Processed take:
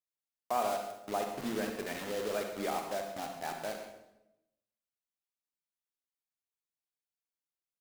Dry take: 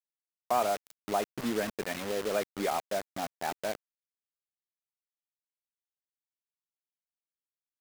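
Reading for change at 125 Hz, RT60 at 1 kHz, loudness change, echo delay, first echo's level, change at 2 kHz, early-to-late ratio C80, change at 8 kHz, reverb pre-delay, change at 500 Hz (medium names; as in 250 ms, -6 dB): -3.5 dB, 0.85 s, -3.5 dB, 136 ms, -13.0 dB, -3.5 dB, 7.0 dB, -3.5 dB, 37 ms, -3.5 dB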